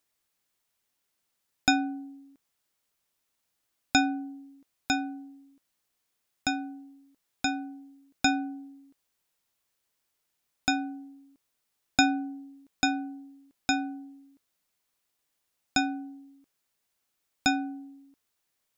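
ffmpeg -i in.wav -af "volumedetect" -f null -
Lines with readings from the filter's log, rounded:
mean_volume: -34.5 dB
max_volume: -5.4 dB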